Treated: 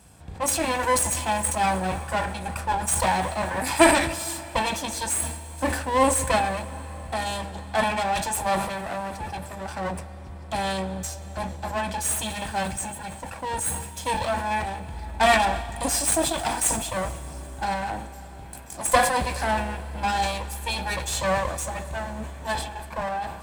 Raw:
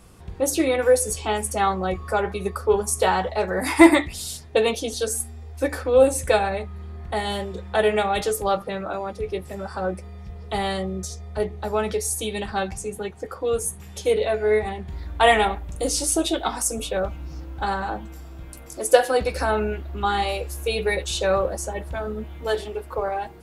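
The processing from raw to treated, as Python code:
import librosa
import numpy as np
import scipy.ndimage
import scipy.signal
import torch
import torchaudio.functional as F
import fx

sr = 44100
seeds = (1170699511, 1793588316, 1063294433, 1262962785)

y = fx.lower_of_two(x, sr, delay_ms=1.2)
y = scipy.signal.sosfilt(scipy.signal.butter(2, 59.0, 'highpass', fs=sr, output='sos'), y)
y = fx.peak_eq(y, sr, hz=8100.0, db=9.5, octaves=0.2)
y = fx.rev_plate(y, sr, seeds[0], rt60_s=4.9, hf_ratio=0.9, predelay_ms=0, drr_db=13.5)
y = fx.sustainer(y, sr, db_per_s=64.0)
y = F.gain(torch.from_numpy(y), -1.0).numpy()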